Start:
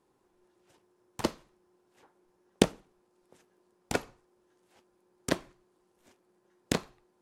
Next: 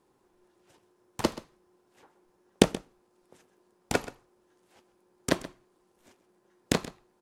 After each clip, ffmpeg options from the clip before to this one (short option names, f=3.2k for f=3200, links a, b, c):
-af "aecho=1:1:129:0.15,volume=3dB"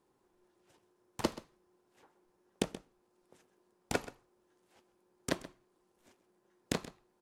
-af "alimiter=limit=-10dB:level=0:latency=1:release=444,volume=-5.5dB"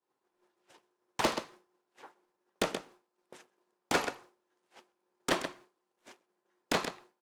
-filter_complex "[0:a]agate=range=-33dB:threshold=-60dB:ratio=3:detection=peak,asplit=2[a][b];[b]highpass=f=720:p=1,volume=26dB,asoftclip=type=tanh:threshold=-15dB[c];[a][c]amix=inputs=2:normalize=0,lowpass=f=4.7k:p=1,volume=-6dB,volume=-2dB"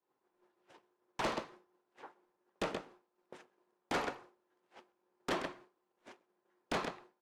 -af "lowpass=f=2.2k:p=1,asoftclip=type=tanh:threshold=-31dB,volume=1dB"